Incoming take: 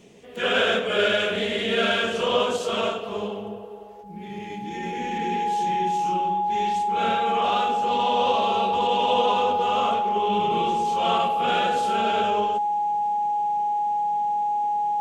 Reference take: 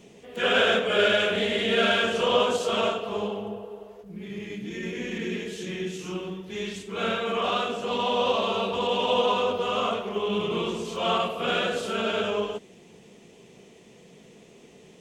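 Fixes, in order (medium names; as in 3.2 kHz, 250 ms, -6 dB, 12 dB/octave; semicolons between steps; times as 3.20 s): band-stop 830 Hz, Q 30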